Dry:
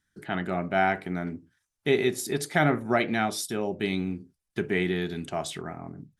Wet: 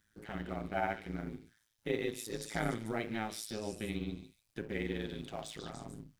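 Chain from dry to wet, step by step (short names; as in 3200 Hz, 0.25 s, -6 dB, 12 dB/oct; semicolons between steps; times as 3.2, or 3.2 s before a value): G.711 law mismatch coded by mu; on a send: delay with a stepping band-pass 0.146 s, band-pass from 3900 Hz, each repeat 0.7 oct, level -3.5 dB; on the sum: AM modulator 110 Hz, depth 95%; in parallel at -1.5 dB: compressor, threshold -35 dBFS, peak gain reduction 14.5 dB; on the sum: harmonic-percussive split percussive -6 dB; gain -7.5 dB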